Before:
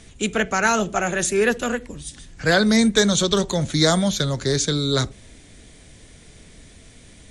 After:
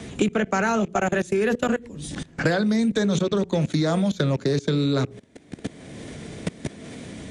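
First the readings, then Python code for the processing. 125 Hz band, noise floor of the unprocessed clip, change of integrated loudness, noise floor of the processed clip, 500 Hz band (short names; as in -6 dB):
-0.5 dB, -47 dBFS, -3.5 dB, -50 dBFS, -2.0 dB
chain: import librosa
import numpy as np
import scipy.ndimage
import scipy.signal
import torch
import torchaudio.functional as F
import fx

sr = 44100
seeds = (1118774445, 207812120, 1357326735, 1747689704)

y = fx.rattle_buzz(x, sr, strikes_db=-29.0, level_db=-29.0)
y = scipy.signal.sosfilt(scipy.signal.butter(2, 180.0, 'highpass', fs=sr, output='sos'), y)
y = fx.tilt_eq(y, sr, slope=-3.0)
y = fx.hum_notches(y, sr, base_hz=60, count=8)
y = fx.level_steps(y, sr, step_db=23)
y = fx.wow_flutter(y, sr, seeds[0], rate_hz=2.1, depth_cents=21.0)
y = fx.band_squash(y, sr, depth_pct=100)
y = F.gain(torch.from_numpy(y), 2.0).numpy()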